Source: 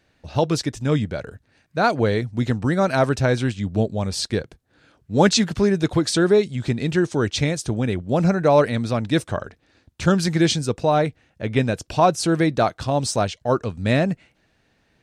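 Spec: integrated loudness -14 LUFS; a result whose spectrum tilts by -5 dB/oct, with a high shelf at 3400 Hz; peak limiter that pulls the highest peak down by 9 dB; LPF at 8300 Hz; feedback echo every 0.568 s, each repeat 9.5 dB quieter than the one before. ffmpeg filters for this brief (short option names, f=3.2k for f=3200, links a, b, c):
-af "lowpass=8.3k,highshelf=f=3.4k:g=6,alimiter=limit=-11dB:level=0:latency=1,aecho=1:1:568|1136|1704|2272:0.335|0.111|0.0365|0.012,volume=8.5dB"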